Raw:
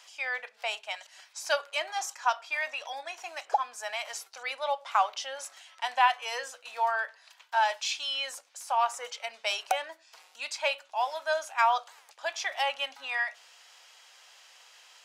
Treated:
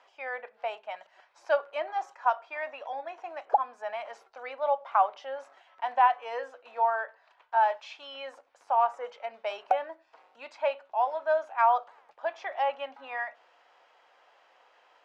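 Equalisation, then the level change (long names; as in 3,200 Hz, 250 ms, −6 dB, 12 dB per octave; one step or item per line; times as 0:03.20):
low-pass filter 1,300 Hz 6 dB per octave
spectral tilt −5.5 dB per octave
low-shelf EQ 350 Hz −12 dB
+4.5 dB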